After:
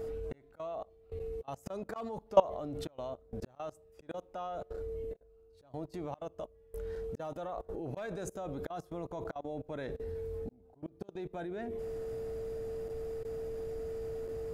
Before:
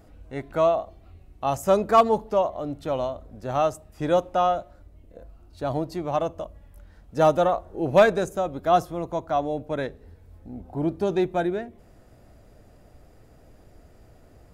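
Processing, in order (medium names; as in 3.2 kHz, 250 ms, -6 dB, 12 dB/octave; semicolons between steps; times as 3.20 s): whistle 450 Hz -41 dBFS; slow attack 693 ms; level held to a coarse grid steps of 22 dB; trim +5 dB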